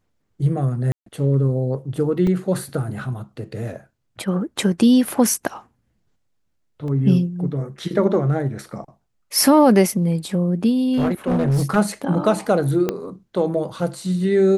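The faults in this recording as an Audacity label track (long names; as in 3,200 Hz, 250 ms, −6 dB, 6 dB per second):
0.920000	1.060000	drop-out 143 ms
2.270000	2.270000	drop-out 2.2 ms
6.880000	6.880000	drop-out 2.1 ms
10.920000	11.770000	clipping −15 dBFS
12.890000	12.890000	click −8 dBFS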